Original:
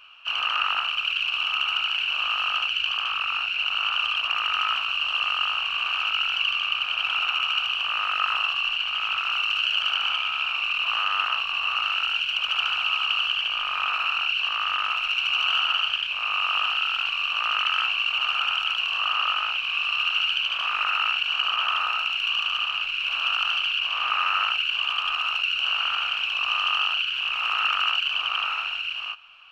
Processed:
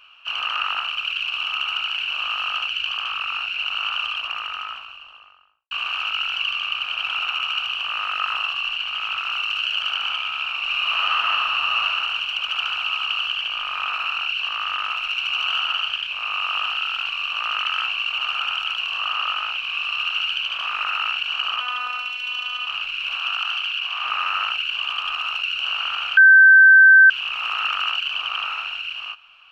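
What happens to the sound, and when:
0:03.89–0:05.71: fade out and dull
0:10.59–0:11.85: thrown reverb, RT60 2.2 s, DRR −2 dB
0:21.60–0:22.67: phases set to zero 248 Hz
0:23.17–0:24.05: elliptic high-pass filter 670 Hz
0:26.17–0:27.10: beep over 1,550 Hz −6.5 dBFS

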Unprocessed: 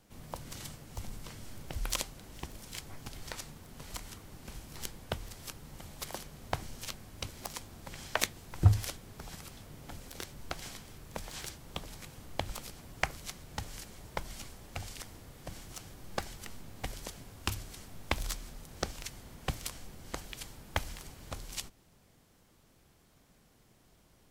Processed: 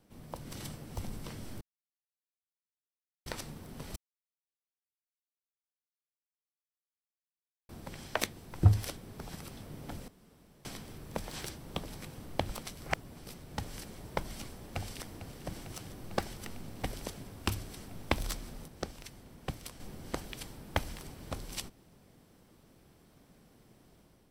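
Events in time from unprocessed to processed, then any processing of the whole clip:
0:01.61–0:03.26: silence
0:03.96–0:07.69: silence
0:10.08–0:10.65: fill with room tone
0:12.63–0:13.34: reverse
0:14.32–0:15.21: delay throw 450 ms, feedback 85%, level −13 dB
0:18.68–0:19.80: clip gain −6.5 dB
whole clip: parametric band 270 Hz +6.5 dB 2.8 octaves; notch filter 6,800 Hz, Q 8.6; automatic gain control gain up to 5.5 dB; level −5.5 dB

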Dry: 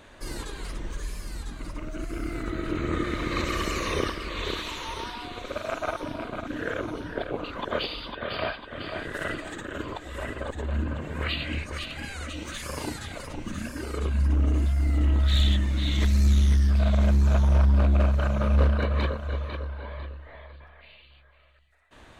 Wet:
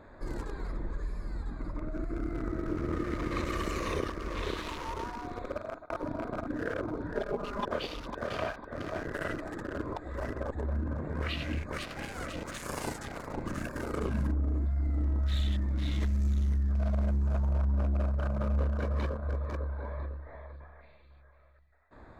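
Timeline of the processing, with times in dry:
0:05.47–0:05.90: fade out linear
0:07.14–0:07.66: comb filter 4.9 ms, depth 90%
0:11.69–0:14.30: ceiling on every frequency bin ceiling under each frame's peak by 13 dB
whole clip: adaptive Wiener filter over 15 samples; dynamic equaliser 3,300 Hz, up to −4 dB, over −49 dBFS, Q 0.82; downward compressor 2.5 to 1, threshold −30 dBFS

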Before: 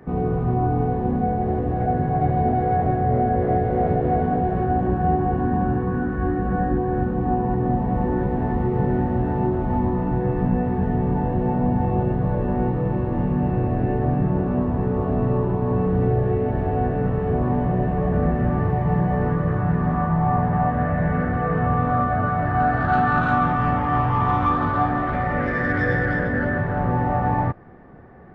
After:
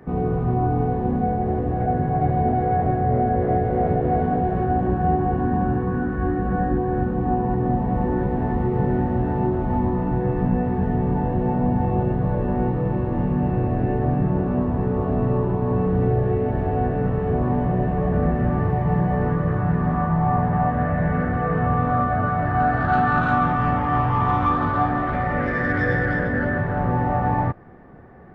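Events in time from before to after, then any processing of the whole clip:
0:01.36–0:04.15: high-frequency loss of the air 67 metres

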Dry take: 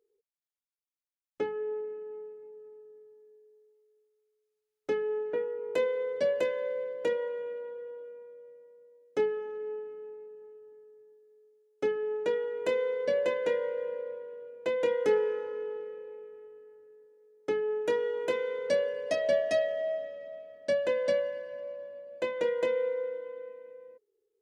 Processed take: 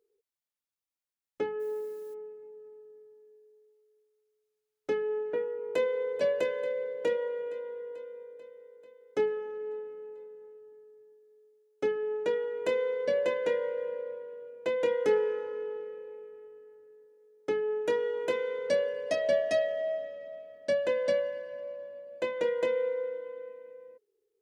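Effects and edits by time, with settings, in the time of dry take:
0:01.59–0:02.13: background noise blue −64 dBFS
0:05.48–0:06.20: delay throw 440 ms, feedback 70%, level −10.5 dB

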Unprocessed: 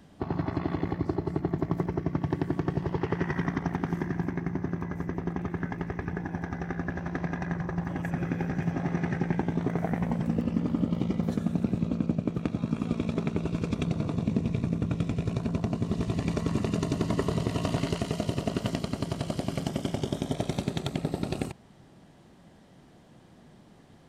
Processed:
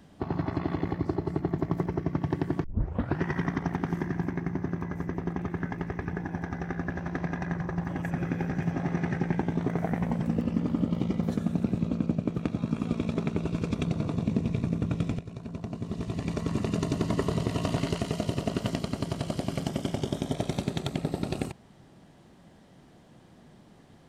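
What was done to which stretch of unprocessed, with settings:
0:02.64: tape start 0.58 s
0:15.19–0:16.80: fade in, from −13 dB

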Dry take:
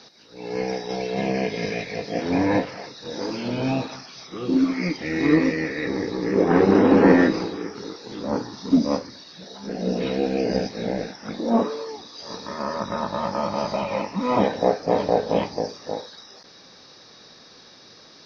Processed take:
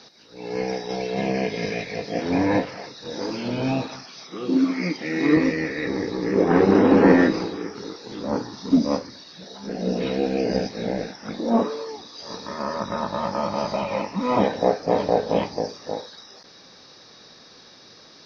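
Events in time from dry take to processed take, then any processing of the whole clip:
0:04.05–0:05.37: high-pass filter 150 Hz 24 dB per octave

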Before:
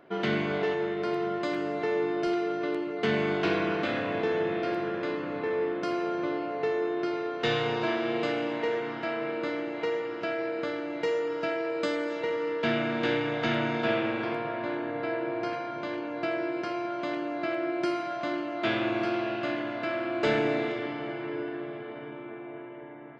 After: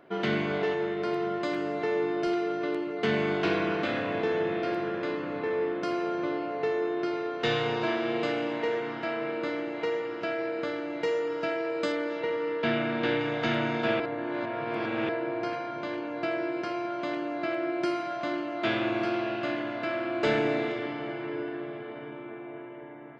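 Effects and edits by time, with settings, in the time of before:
0:11.92–0:13.20: low-pass filter 4,800 Hz
0:14.00–0:15.09: reverse

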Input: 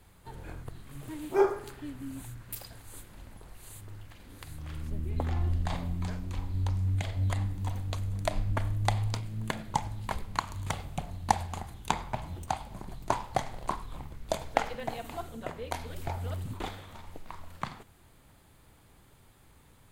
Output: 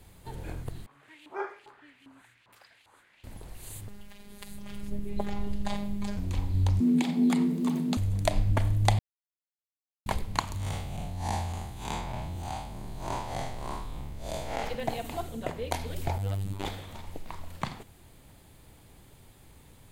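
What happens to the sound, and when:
0:00.86–0:03.24: auto-filter band-pass saw up 2.5 Hz 900–3,100 Hz
0:03.88–0:06.17: phases set to zero 203 Hz
0:06.80–0:07.97: frequency shifter +150 Hz
0:08.99–0:10.06: silence
0:10.57–0:14.63: spectrum smeared in time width 136 ms
0:16.18–0:16.65: phases set to zero 98.3 Hz
whole clip: parametric band 1,300 Hz −6 dB 0.96 octaves; level +5 dB

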